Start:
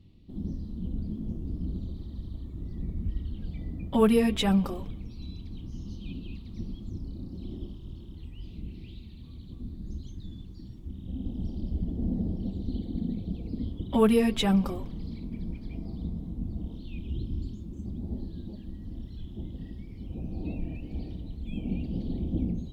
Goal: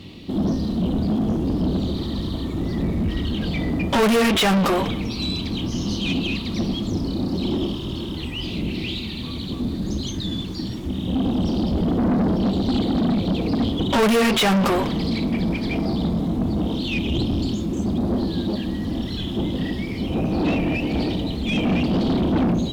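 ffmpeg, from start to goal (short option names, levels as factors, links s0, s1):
-filter_complex "[0:a]asplit=2[s0][s1];[s1]highpass=f=720:p=1,volume=70.8,asoftclip=type=tanh:threshold=0.316[s2];[s0][s2]amix=inputs=2:normalize=0,lowpass=f=5600:p=1,volume=0.501,volume=0.891"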